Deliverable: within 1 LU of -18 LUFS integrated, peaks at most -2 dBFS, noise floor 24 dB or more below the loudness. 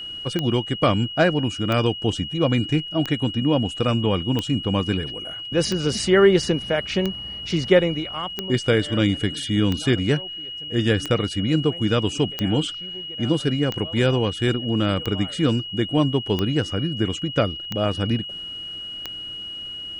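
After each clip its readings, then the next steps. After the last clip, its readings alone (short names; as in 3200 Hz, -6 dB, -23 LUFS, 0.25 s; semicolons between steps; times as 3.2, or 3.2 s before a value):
clicks 15; steady tone 2900 Hz; tone level -31 dBFS; loudness -22.5 LUFS; peak -3.5 dBFS; loudness target -18.0 LUFS
-> de-click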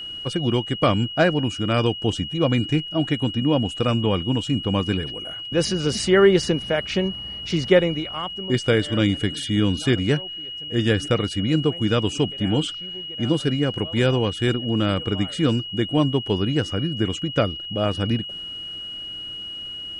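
clicks 0; steady tone 2900 Hz; tone level -31 dBFS
-> notch 2900 Hz, Q 30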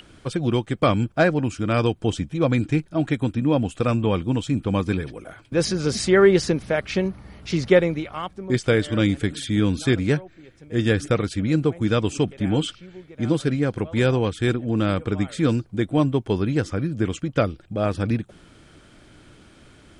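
steady tone none; loudness -22.5 LUFS; peak -3.5 dBFS; loudness target -18.0 LUFS
-> gain +4.5 dB; limiter -2 dBFS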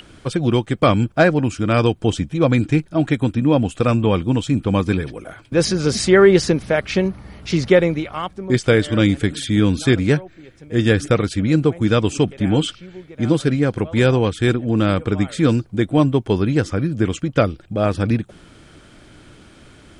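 loudness -18.5 LUFS; peak -2.0 dBFS; noise floor -47 dBFS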